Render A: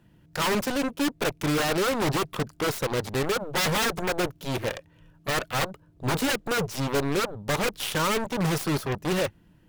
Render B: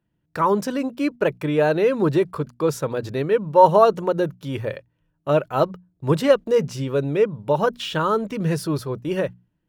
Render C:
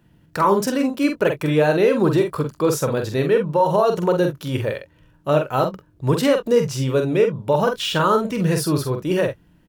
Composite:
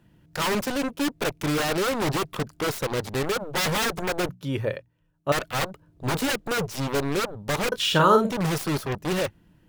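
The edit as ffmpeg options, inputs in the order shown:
-filter_complex "[0:a]asplit=3[a][b][c];[a]atrim=end=4.292[d];[1:a]atrim=start=4.288:end=5.322[e];[b]atrim=start=5.318:end=7.722[f];[2:a]atrim=start=7.718:end=8.322[g];[c]atrim=start=8.318[h];[d][e]acrossfade=d=0.004:c1=hsin:c2=hsin[i];[i][f]acrossfade=d=0.004:c1=hsin:c2=hsin[j];[j][g]acrossfade=d=0.004:c1=hsin:c2=hsin[k];[k][h]acrossfade=d=0.004:c1=hsin:c2=hsin"

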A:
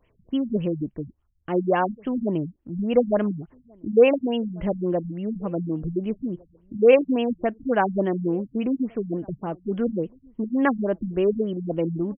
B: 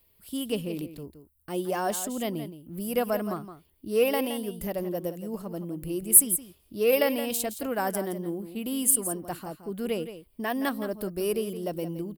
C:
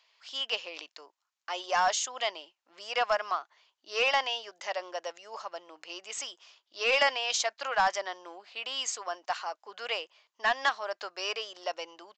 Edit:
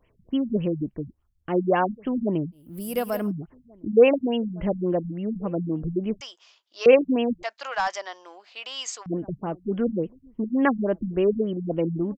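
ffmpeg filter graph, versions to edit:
-filter_complex "[2:a]asplit=2[a][b];[0:a]asplit=4[c][d][e][f];[c]atrim=end=2.67[g];[1:a]atrim=start=2.51:end=3.32[h];[d]atrim=start=3.16:end=6.212[i];[a]atrim=start=6.208:end=6.862[j];[e]atrim=start=6.858:end=7.432[k];[b]atrim=start=7.428:end=9.062[l];[f]atrim=start=9.058[m];[g][h]acrossfade=d=0.16:c1=tri:c2=tri[n];[n][i]acrossfade=d=0.16:c1=tri:c2=tri[o];[o][j]acrossfade=d=0.004:c1=hsin:c2=hsin[p];[p][k]acrossfade=d=0.004:c1=hsin:c2=hsin[q];[q][l]acrossfade=d=0.004:c1=hsin:c2=hsin[r];[r][m]acrossfade=d=0.004:c1=hsin:c2=hsin"

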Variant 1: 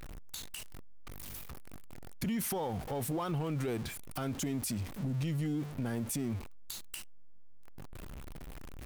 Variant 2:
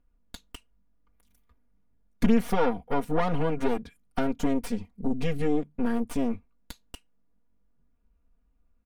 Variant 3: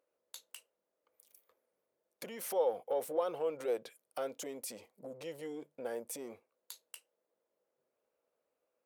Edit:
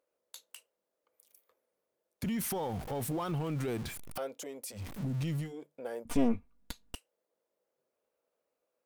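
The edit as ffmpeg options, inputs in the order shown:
-filter_complex "[0:a]asplit=2[a][b];[2:a]asplit=4[c][d][e][f];[c]atrim=end=2.232[g];[a]atrim=start=2.228:end=4.182[h];[d]atrim=start=4.178:end=4.87[i];[b]atrim=start=4.71:end=5.54[j];[e]atrim=start=5.38:end=6.052[k];[1:a]atrim=start=6.048:end=6.952[l];[f]atrim=start=6.948[m];[g][h]acrossfade=d=0.004:c1=hsin:c2=hsin[n];[n][i]acrossfade=d=0.004:c1=hsin:c2=hsin[o];[o][j]acrossfade=d=0.16:c1=tri:c2=tri[p];[p][k]acrossfade=d=0.16:c1=tri:c2=tri[q];[q][l]acrossfade=d=0.004:c1=hsin:c2=hsin[r];[r][m]acrossfade=d=0.004:c1=hsin:c2=hsin"

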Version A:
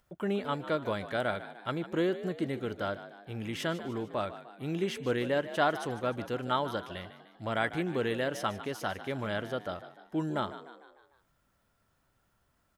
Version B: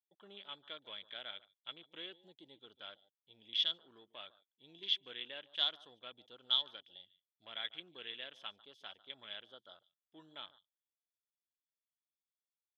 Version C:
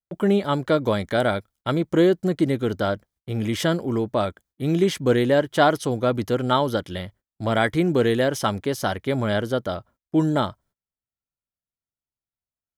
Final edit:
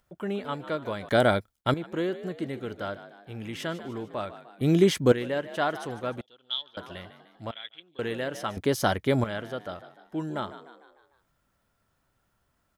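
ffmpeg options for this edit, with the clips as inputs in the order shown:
-filter_complex "[2:a]asplit=3[a][b][c];[1:a]asplit=2[d][e];[0:a]asplit=6[f][g][h][i][j][k];[f]atrim=end=1.092[l];[a]atrim=start=1.088:end=1.742[m];[g]atrim=start=1.738:end=4.612[n];[b]atrim=start=4.608:end=5.122[o];[h]atrim=start=5.118:end=6.212[p];[d]atrim=start=6.208:end=6.772[q];[i]atrim=start=6.768:end=7.512[r];[e]atrim=start=7.508:end=7.992[s];[j]atrim=start=7.988:end=8.572[t];[c]atrim=start=8.568:end=9.242[u];[k]atrim=start=9.238[v];[l][m]acrossfade=d=0.004:c1=hsin:c2=hsin[w];[w][n]acrossfade=d=0.004:c1=hsin:c2=hsin[x];[x][o]acrossfade=d=0.004:c1=hsin:c2=hsin[y];[y][p]acrossfade=d=0.004:c1=hsin:c2=hsin[z];[z][q]acrossfade=d=0.004:c1=hsin:c2=hsin[aa];[aa][r]acrossfade=d=0.004:c1=hsin:c2=hsin[ab];[ab][s]acrossfade=d=0.004:c1=hsin:c2=hsin[ac];[ac][t]acrossfade=d=0.004:c1=hsin:c2=hsin[ad];[ad][u]acrossfade=d=0.004:c1=hsin:c2=hsin[ae];[ae][v]acrossfade=d=0.004:c1=hsin:c2=hsin"

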